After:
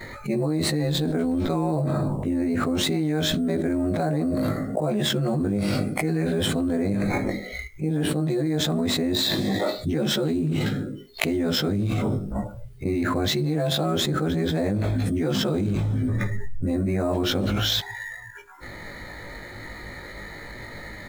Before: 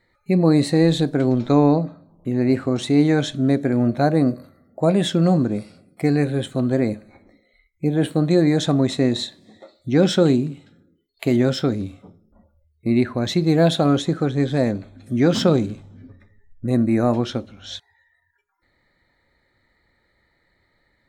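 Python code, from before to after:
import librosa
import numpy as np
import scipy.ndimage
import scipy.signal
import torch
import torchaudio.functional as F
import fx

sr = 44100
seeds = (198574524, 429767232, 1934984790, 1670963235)

p1 = fx.frame_reverse(x, sr, frame_ms=39.0)
p2 = fx.sample_hold(p1, sr, seeds[0], rate_hz=8600.0, jitter_pct=0)
p3 = p1 + (p2 * 10.0 ** (-8.0 / 20.0))
p4 = fx.env_flatten(p3, sr, amount_pct=100)
y = p4 * 10.0 ** (-12.5 / 20.0)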